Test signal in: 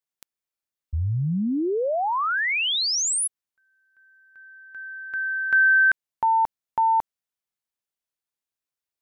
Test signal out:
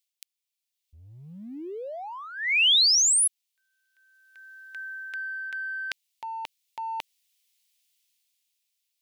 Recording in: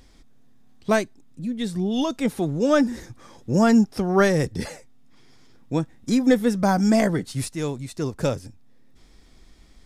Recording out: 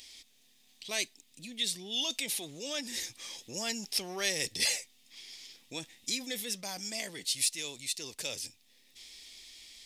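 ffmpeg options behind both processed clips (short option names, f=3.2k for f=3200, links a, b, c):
-af "areverse,acompressor=threshold=-29dB:ratio=4:attack=1.9:release=56:knee=6:detection=peak,areverse,aexciter=amount=12.5:drive=6.7:freq=2.2k,dynaudnorm=f=120:g=17:m=10.5dB,bass=f=250:g=-12,treble=f=4k:g=-8,volume=-8.5dB"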